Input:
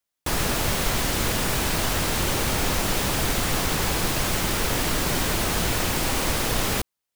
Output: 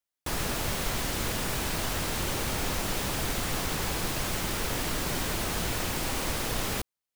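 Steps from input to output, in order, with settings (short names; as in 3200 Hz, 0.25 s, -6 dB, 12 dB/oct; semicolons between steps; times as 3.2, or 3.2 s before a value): gain -6.5 dB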